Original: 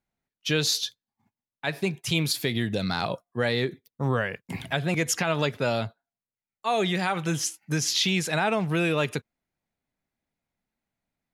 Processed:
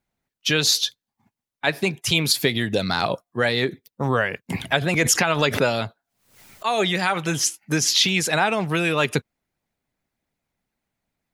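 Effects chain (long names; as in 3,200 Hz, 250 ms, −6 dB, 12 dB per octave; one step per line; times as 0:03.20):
harmonic and percussive parts rebalanced percussive +7 dB
0:04.81–0:06.67: background raised ahead of every attack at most 100 dB per second
level +1 dB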